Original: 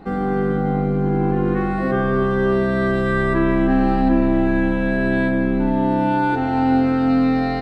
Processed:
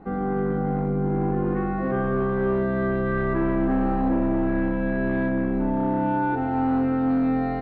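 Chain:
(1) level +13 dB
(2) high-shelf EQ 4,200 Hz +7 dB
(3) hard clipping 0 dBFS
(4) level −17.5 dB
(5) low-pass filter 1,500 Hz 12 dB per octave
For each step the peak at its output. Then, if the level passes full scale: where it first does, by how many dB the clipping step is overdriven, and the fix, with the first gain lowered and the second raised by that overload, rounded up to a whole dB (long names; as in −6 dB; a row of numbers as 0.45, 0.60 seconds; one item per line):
+7.5, +7.5, 0.0, −17.5, −17.0 dBFS
step 1, 7.5 dB
step 1 +5 dB, step 4 −9.5 dB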